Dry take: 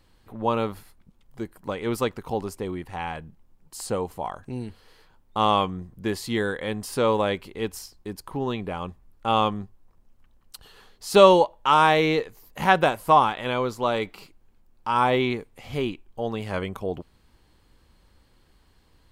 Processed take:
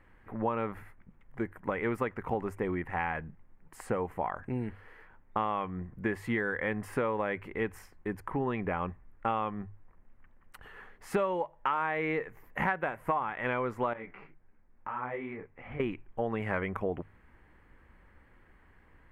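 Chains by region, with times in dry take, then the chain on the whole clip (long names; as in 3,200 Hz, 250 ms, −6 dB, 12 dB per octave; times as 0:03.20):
0:13.93–0:15.80: low-pass filter 2,600 Hz + downward compressor, threshold −32 dBFS + micro pitch shift up and down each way 37 cents
whole clip: high shelf with overshoot 2,900 Hz −14 dB, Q 3; mains-hum notches 50/100/150 Hz; downward compressor 10 to 1, threshold −27 dBFS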